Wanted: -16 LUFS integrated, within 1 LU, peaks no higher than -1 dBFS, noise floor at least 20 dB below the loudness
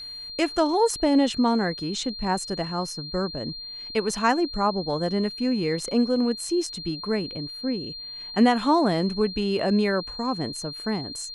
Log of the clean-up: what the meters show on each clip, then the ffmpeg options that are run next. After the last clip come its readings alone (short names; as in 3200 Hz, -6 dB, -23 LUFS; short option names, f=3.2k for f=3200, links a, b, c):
steady tone 4200 Hz; tone level -35 dBFS; loudness -25.0 LUFS; peak -7.5 dBFS; loudness target -16.0 LUFS
-> -af "bandreject=f=4.2k:w=30"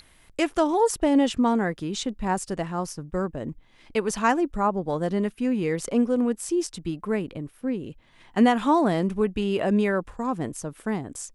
steady tone none; loudness -25.5 LUFS; peak -7.5 dBFS; loudness target -16.0 LUFS
-> -af "volume=9.5dB,alimiter=limit=-1dB:level=0:latency=1"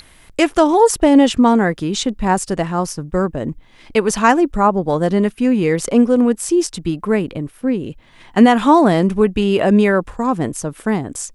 loudness -16.0 LUFS; peak -1.0 dBFS; noise floor -47 dBFS